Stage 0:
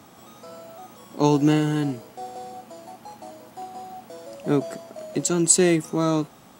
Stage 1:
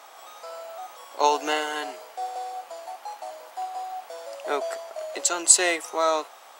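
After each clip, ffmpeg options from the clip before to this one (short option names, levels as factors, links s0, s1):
-af "highpass=f=590:w=0.5412,highpass=f=590:w=1.3066,highshelf=f=6200:g=-5.5,volume=1.88"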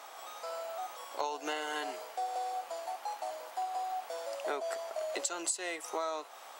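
-af "acompressor=threshold=0.0316:ratio=12,volume=0.841"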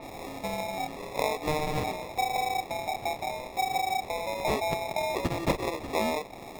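-af "acrusher=samples=29:mix=1:aa=0.000001,adynamicequalizer=threshold=0.00158:dfrequency=5600:dqfactor=0.7:tfrequency=5600:tqfactor=0.7:attack=5:release=100:ratio=0.375:range=2.5:mode=cutabove:tftype=highshelf,volume=2.37"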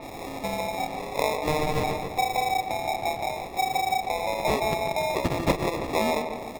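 -filter_complex "[0:a]asplit=2[s0][s1];[s1]adelay=144,lowpass=f=2400:p=1,volume=0.447,asplit=2[s2][s3];[s3]adelay=144,lowpass=f=2400:p=1,volume=0.52,asplit=2[s4][s5];[s5]adelay=144,lowpass=f=2400:p=1,volume=0.52,asplit=2[s6][s7];[s7]adelay=144,lowpass=f=2400:p=1,volume=0.52,asplit=2[s8][s9];[s9]adelay=144,lowpass=f=2400:p=1,volume=0.52,asplit=2[s10][s11];[s11]adelay=144,lowpass=f=2400:p=1,volume=0.52[s12];[s0][s2][s4][s6][s8][s10][s12]amix=inputs=7:normalize=0,volume=1.41"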